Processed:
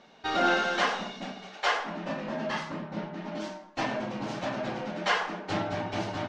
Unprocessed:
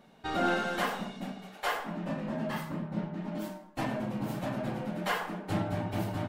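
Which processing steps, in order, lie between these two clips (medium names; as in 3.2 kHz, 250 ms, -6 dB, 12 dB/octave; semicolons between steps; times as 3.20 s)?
FFT filter 160 Hz 0 dB, 370 Hz +7 dB, 6.1 kHz +13 dB, 13 kHz -25 dB; trim -4.5 dB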